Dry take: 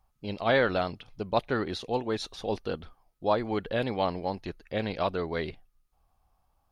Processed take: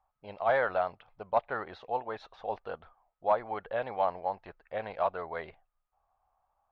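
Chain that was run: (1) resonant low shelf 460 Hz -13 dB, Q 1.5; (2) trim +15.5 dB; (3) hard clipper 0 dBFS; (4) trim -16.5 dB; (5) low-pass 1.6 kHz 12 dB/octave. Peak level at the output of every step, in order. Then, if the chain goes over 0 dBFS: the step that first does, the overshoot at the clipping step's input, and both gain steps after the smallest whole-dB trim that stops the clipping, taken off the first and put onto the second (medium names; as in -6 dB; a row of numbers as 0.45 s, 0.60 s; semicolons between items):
-11.0 dBFS, +4.5 dBFS, 0.0 dBFS, -16.5 dBFS, -16.0 dBFS; step 2, 4.5 dB; step 2 +10.5 dB, step 4 -11.5 dB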